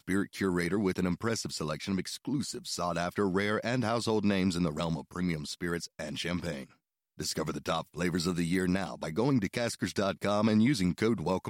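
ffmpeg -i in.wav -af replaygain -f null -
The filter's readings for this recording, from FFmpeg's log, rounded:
track_gain = +12.2 dB
track_peak = 0.115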